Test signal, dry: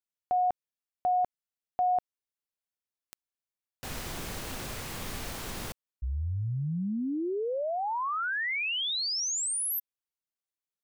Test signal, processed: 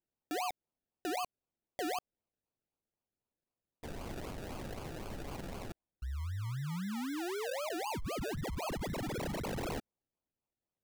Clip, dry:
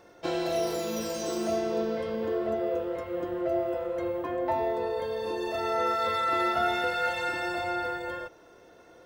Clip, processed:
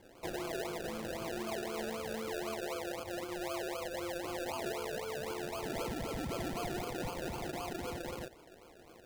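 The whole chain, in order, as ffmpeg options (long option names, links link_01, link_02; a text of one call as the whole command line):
ffmpeg -i in.wav -af "acrusher=samples=33:mix=1:aa=0.000001:lfo=1:lforange=19.8:lforate=3.9,acompressor=threshold=-35dB:ratio=2.5:attack=0.55:release=132:detection=rms,volume=-2.5dB" out.wav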